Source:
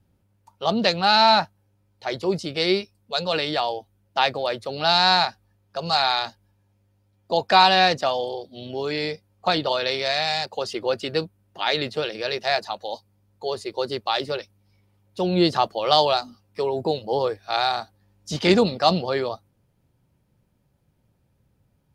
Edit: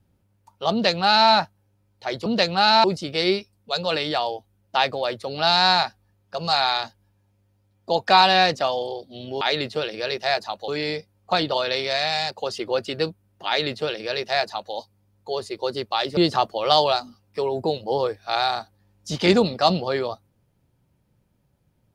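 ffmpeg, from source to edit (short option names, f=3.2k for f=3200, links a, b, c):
-filter_complex "[0:a]asplit=6[a][b][c][d][e][f];[a]atrim=end=2.262[g];[b]atrim=start=0.718:end=1.302[h];[c]atrim=start=2.258:end=8.832[i];[d]atrim=start=11.618:end=12.892[j];[e]atrim=start=8.828:end=14.322[k];[f]atrim=start=15.378[l];[g][h]acrossfade=d=0.004:c1=hsin:c2=hsin[m];[m][i]acrossfade=d=0.004:c1=hsin:c2=hsin[n];[n][j]acrossfade=d=0.004:c1=hsin:c2=hsin[o];[o][k]acrossfade=d=0.004:c1=hsin:c2=hsin[p];[p][l]acrossfade=d=0.004:c1=hsin:c2=hsin"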